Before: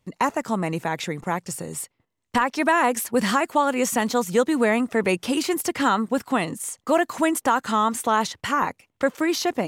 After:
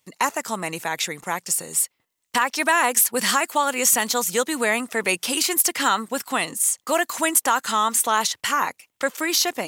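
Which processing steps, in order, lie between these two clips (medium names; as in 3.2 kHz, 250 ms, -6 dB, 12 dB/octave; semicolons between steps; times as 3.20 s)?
tilt EQ +3.5 dB/octave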